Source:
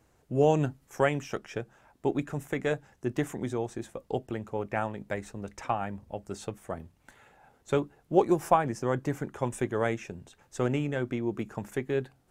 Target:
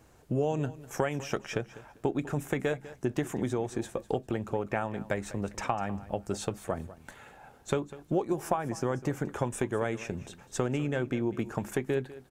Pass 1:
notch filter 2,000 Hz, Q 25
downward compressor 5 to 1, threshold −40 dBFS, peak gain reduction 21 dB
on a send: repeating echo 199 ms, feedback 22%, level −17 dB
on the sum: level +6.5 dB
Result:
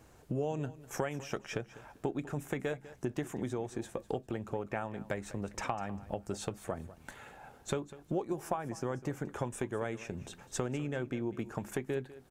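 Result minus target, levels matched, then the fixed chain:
downward compressor: peak gain reduction +5.5 dB
notch filter 2,000 Hz, Q 25
downward compressor 5 to 1, threshold −33 dBFS, peak gain reduction 15.5 dB
on a send: repeating echo 199 ms, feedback 22%, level −17 dB
on the sum: level +6.5 dB

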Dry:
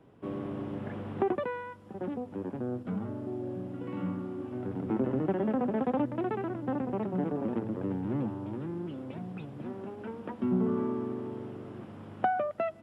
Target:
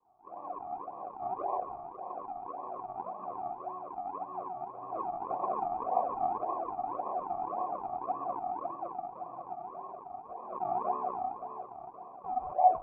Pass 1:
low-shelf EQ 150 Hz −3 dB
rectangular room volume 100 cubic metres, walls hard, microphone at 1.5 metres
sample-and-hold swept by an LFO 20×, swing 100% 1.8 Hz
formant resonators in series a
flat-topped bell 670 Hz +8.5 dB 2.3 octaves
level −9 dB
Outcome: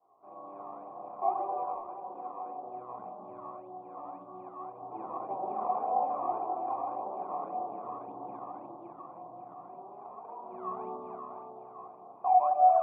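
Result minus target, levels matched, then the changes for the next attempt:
sample-and-hold swept by an LFO: distortion −13 dB
change: sample-and-hold swept by an LFO 59×, swing 100% 1.8 Hz

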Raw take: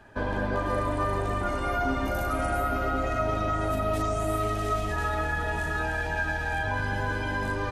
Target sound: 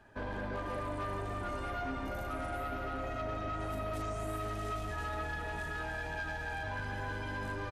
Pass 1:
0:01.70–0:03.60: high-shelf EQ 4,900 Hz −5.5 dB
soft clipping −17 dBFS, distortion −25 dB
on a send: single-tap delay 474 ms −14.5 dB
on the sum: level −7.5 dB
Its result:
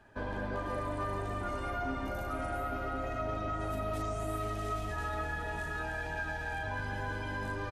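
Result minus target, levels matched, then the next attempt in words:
soft clipping: distortion −11 dB
0:01.70–0:03.60: high-shelf EQ 4,900 Hz −5.5 dB
soft clipping −24.5 dBFS, distortion −15 dB
on a send: single-tap delay 474 ms −14.5 dB
on the sum: level −7.5 dB

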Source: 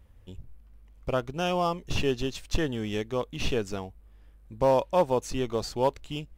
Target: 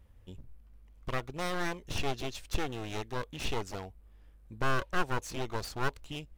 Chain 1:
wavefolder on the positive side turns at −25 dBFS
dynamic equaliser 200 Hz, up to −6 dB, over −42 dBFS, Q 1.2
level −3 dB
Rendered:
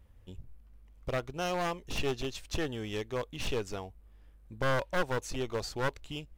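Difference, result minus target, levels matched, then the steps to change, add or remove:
wavefolder on the positive side: distortion −11 dB
change: wavefolder on the positive side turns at −35.5 dBFS

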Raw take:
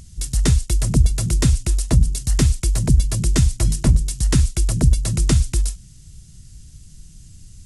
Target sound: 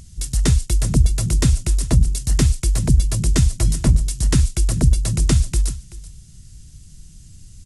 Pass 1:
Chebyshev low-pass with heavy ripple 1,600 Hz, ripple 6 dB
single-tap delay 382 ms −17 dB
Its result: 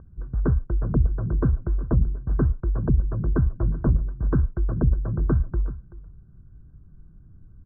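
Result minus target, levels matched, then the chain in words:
2,000 Hz band −4.5 dB
single-tap delay 382 ms −17 dB

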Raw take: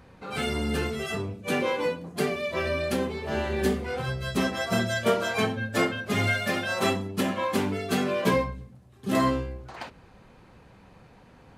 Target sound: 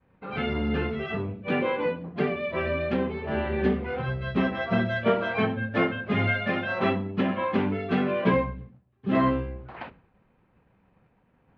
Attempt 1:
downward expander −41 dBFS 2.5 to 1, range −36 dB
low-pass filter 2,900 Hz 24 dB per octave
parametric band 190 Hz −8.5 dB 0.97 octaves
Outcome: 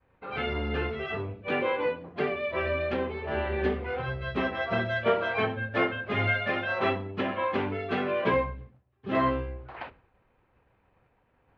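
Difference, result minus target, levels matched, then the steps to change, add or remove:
250 Hz band −5.0 dB
change: parametric band 190 Hz +3 dB 0.97 octaves

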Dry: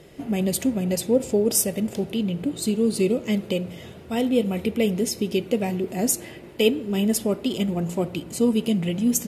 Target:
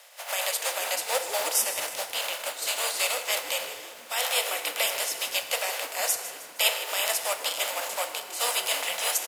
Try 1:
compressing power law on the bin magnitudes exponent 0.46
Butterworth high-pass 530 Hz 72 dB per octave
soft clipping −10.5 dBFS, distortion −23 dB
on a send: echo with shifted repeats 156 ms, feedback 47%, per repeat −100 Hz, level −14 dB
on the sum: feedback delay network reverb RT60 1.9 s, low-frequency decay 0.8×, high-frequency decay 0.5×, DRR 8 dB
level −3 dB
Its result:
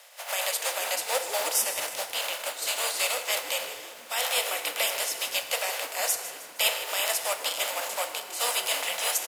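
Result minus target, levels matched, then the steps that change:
soft clipping: distortion +16 dB
change: soft clipping −1 dBFS, distortion −39 dB

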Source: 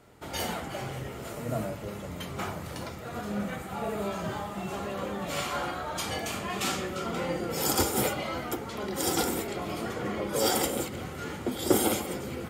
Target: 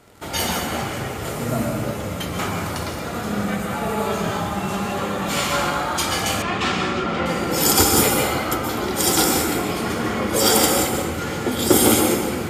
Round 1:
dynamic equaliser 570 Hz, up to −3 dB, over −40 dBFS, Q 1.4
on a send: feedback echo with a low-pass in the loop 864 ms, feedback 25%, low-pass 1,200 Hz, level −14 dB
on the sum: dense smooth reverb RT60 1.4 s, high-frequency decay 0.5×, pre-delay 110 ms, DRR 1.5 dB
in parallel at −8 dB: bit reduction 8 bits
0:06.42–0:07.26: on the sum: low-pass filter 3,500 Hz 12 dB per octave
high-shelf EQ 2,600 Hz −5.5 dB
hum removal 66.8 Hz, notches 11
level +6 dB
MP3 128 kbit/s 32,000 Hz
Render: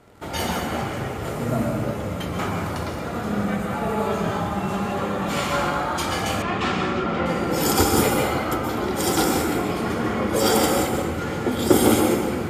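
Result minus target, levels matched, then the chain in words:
4,000 Hz band −3.5 dB
dynamic equaliser 570 Hz, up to −3 dB, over −40 dBFS, Q 1.4
on a send: feedback echo with a low-pass in the loop 864 ms, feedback 25%, low-pass 1,200 Hz, level −14 dB
on the sum: dense smooth reverb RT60 1.4 s, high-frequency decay 0.5×, pre-delay 110 ms, DRR 1.5 dB
in parallel at −8 dB: bit reduction 8 bits
0:06.42–0:07.26: on the sum: low-pass filter 3,500 Hz 12 dB per octave
high-shelf EQ 2,600 Hz +3 dB
hum removal 66.8 Hz, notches 11
level +6 dB
MP3 128 kbit/s 32,000 Hz

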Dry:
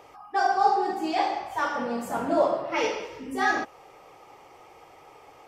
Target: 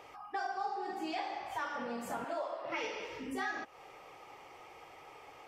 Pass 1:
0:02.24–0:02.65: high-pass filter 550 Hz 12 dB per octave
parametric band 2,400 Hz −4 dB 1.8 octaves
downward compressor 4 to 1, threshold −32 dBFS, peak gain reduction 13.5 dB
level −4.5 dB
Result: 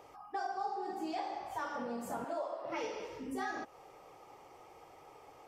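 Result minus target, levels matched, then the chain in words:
2,000 Hz band −4.0 dB
0:02.24–0:02.65: high-pass filter 550 Hz 12 dB per octave
parametric band 2,400 Hz +5.5 dB 1.8 octaves
downward compressor 4 to 1, threshold −32 dBFS, peak gain reduction 14.5 dB
level −4.5 dB

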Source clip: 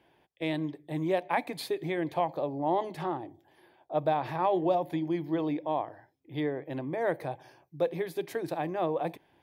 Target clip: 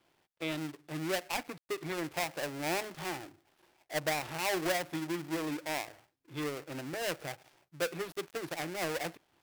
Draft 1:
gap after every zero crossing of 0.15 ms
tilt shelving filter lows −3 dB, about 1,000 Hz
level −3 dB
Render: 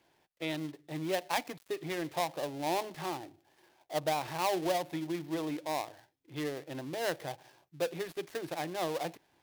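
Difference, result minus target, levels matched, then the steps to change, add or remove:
gap after every zero crossing: distortion −9 dB
change: gap after every zero crossing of 0.33 ms

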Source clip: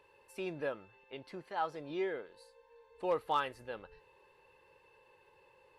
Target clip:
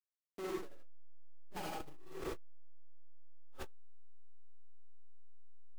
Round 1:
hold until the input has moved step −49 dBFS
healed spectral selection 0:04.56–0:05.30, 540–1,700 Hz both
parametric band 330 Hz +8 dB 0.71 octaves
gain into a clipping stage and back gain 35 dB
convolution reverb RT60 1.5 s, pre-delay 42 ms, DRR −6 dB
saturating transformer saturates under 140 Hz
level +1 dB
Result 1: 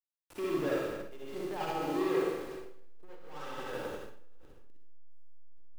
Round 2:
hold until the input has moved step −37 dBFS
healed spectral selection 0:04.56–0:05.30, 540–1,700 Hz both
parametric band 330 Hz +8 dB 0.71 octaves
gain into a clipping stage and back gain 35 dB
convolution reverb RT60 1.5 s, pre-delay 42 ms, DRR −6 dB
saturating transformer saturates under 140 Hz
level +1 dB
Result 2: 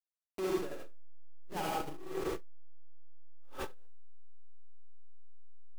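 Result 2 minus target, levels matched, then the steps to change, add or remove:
gain into a clipping stage and back: distortion −6 dB
change: gain into a clipping stage and back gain 43.5 dB

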